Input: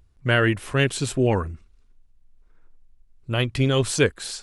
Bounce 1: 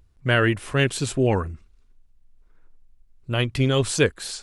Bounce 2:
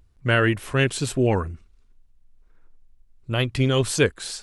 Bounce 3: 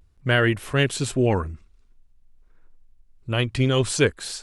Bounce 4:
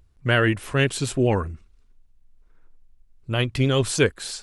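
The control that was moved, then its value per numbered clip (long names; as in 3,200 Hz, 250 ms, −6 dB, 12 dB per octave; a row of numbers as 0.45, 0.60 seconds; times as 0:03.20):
pitch vibrato, speed: 4.3, 2.1, 0.48, 9.6 Hertz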